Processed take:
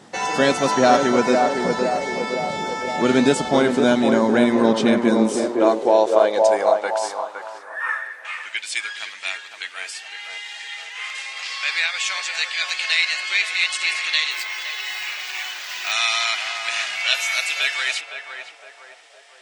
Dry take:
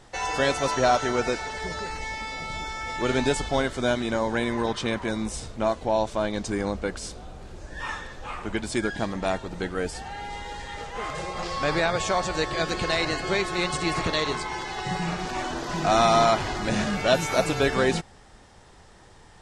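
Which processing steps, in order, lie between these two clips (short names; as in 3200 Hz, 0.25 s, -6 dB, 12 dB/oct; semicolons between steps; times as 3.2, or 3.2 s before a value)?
7.58–8.25 band shelf 4600 Hz -14 dB; 14.31–15.92 careless resampling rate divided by 2×, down none, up hold; narrowing echo 0.512 s, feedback 65%, band-pass 540 Hz, level -3 dB; high-pass sweep 200 Hz -> 2400 Hz, 4.93–8.61; gain +4.5 dB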